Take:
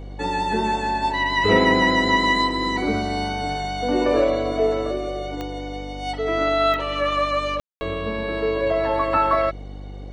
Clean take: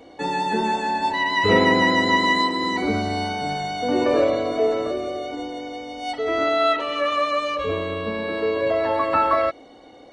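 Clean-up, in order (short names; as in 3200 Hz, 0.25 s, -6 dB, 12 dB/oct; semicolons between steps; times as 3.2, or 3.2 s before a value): de-click; de-hum 49.1 Hz, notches 9; room tone fill 7.6–7.81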